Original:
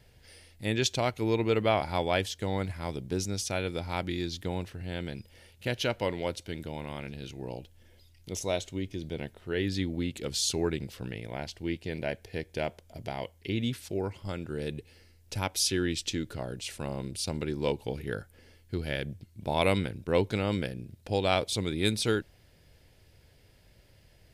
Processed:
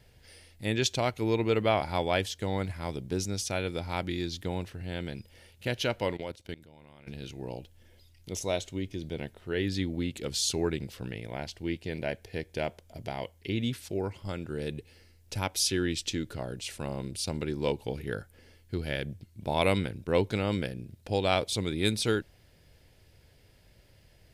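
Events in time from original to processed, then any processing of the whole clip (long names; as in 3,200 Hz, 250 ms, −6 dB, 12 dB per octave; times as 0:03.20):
0:06.17–0:07.07: output level in coarse steps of 18 dB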